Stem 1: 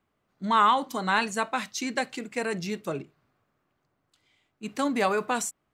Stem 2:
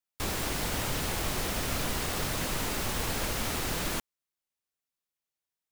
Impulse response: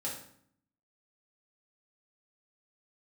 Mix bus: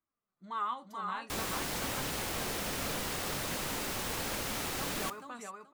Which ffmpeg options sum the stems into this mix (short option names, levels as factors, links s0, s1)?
-filter_complex "[0:a]flanger=delay=3:depth=9.3:regen=43:speed=0.38:shape=triangular,equalizer=f=1200:w=4:g=8,volume=0.168,asplit=2[s0][s1];[s1]volume=0.631[s2];[1:a]lowshelf=f=96:g=-10,adelay=1100,volume=0.631,asplit=2[s3][s4];[s4]volume=0.158[s5];[2:a]atrim=start_sample=2205[s6];[s5][s6]afir=irnorm=-1:irlink=0[s7];[s2]aecho=0:1:428|856|1284:1|0.18|0.0324[s8];[s0][s3][s7][s8]amix=inputs=4:normalize=0"